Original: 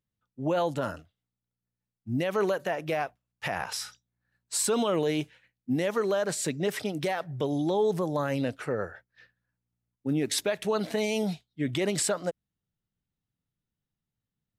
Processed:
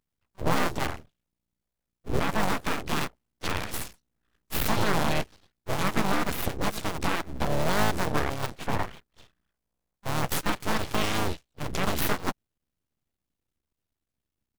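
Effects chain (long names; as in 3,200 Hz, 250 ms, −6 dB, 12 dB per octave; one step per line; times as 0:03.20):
sub-harmonics by changed cycles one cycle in 2, muted
pitch-shifted copies added −5 semitones −4 dB, +7 semitones −17 dB
full-wave rectification
level +4.5 dB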